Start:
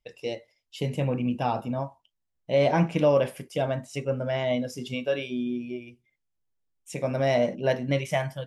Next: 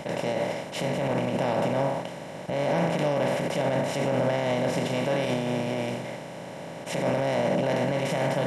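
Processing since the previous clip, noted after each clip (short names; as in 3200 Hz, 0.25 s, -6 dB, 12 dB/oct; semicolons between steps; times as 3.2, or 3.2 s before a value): per-bin compression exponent 0.2; limiter -13 dBFS, peak gain reduction 9.5 dB; three-band expander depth 70%; gain -3.5 dB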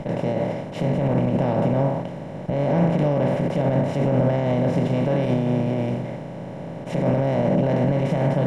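tilt -3.5 dB/oct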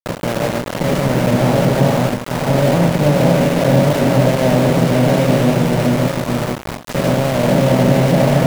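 regenerating reverse delay 0.437 s, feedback 52%, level -1.5 dB; sample gate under -22 dBFS; ending taper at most 170 dB/s; gain +5 dB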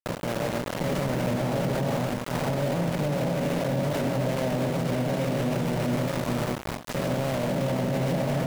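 limiter -12.5 dBFS, peak gain reduction 10.5 dB; gain -6.5 dB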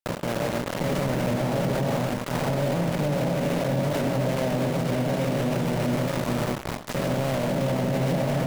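reverb RT60 1.1 s, pre-delay 30 ms, DRR 18 dB; gain +1.5 dB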